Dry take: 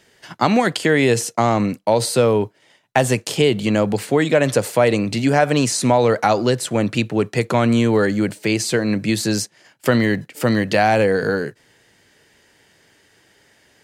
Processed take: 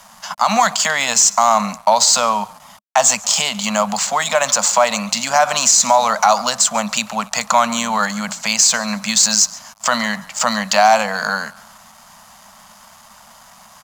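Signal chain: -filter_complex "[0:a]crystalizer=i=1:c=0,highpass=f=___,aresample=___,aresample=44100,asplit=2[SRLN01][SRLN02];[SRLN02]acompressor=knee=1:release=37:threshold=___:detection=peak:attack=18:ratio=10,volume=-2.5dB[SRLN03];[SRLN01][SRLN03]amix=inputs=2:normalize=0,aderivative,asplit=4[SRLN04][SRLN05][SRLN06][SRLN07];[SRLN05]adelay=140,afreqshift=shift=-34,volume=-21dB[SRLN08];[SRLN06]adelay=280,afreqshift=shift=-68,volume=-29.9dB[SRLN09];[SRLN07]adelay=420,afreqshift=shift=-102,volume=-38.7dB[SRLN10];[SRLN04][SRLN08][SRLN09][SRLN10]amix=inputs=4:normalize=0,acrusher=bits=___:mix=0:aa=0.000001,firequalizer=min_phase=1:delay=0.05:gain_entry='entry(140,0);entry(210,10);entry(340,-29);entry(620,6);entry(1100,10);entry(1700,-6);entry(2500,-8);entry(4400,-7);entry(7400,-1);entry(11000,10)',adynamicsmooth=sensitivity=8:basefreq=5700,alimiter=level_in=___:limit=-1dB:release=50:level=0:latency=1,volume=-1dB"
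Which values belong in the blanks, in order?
160, 16000, -27dB, 8, 18.5dB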